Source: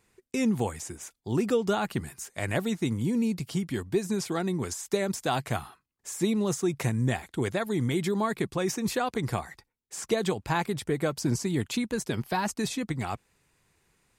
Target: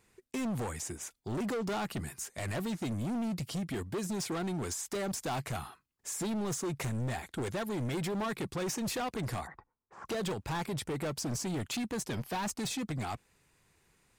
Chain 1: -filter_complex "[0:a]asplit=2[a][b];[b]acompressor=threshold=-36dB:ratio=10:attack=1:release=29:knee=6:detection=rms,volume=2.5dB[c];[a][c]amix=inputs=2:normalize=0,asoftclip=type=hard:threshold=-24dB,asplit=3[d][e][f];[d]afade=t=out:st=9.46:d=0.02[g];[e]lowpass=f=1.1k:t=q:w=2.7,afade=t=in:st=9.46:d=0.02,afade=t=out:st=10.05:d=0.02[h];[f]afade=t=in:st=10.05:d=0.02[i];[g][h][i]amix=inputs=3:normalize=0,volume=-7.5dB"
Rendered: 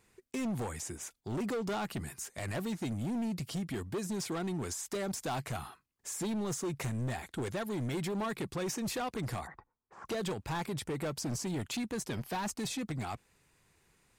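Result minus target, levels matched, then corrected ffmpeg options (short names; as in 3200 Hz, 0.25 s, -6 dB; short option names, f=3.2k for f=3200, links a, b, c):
compressor: peak gain reduction +7.5 dB
-filter_complex "[0:a]asplit=2[a][b];[b]acompressor=threshold=-27.5dB:ratio=10:attack=1:release=29:knee=6:detection=rms,volume=2.5dB[c];[a][c]amix=inputs=2:normalize=0,asoftclip=type=hard:threshold=-24dB,asplit=3[d][e][f];[d]afade=t=out:st=9.46:d=0.02[g];[e]lowpass=f=1.1k:t=q:w=2.7,afade=t=in:st=9.46:d=0.02,afade=t=out:st=10.05:d=0.02[h];[f]afade=t=in:st=10.05:d=0.02[i];[g][h][i]amix=inputs=3:normalize=0,volume=-7.5dB"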